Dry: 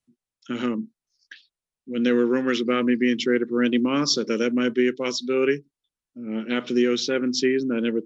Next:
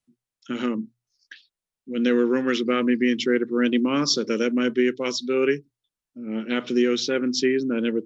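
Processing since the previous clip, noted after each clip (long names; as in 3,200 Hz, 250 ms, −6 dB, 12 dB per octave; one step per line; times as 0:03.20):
mains-hum notches 60/120 Hz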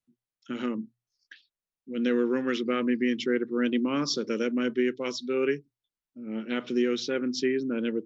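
high-shelf EQ 5,000 Hz −5.5 dB
level −5 dB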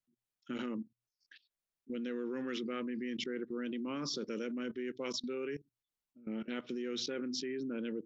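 output level in coarse steps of 19 dB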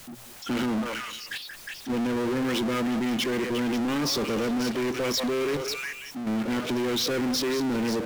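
echo through a band-pass that steps 180 ms, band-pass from 780 Hz, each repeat 1.4 octaves, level −4 dB
power curve on the samples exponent 0.35
level +4.5 dB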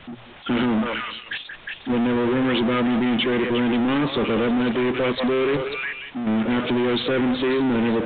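level +6 dB
A-law companding 64 kbit/s 8,000 Hz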